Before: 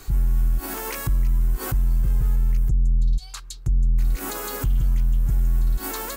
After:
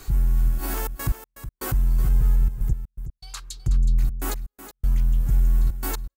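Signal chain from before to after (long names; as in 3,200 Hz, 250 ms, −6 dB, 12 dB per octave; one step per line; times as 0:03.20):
gate pattern "xxxxxxx.x...." 121 BPM −60 dB
single-tap delay 370 ms −11.5 dB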